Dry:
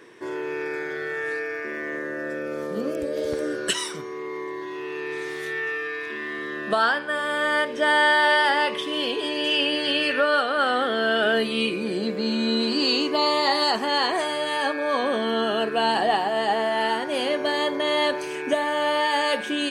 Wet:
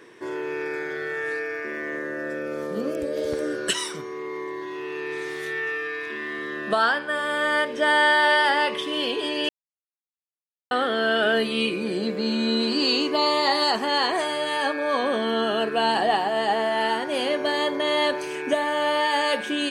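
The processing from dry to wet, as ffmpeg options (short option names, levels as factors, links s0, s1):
-filter_complex "[0:a]asplit=3[s0][s1][s2];[s0]atrim=end=9.49,asetpts=PTS-STARTPTS,afade=t=out:st=9.486:d=0.004:c=hsin[s3];[s1]atrim=start=9.49:end=10.71,asetpts=PTS-STARTPTS,volume=0[s4];[s2]atrim=start=10.71,asetpts=PTS-STARTPTS,afade=t=in:d=0.004:c=hsin[s5];[s3][s4][s5]concat=n=3:v=0:a=1"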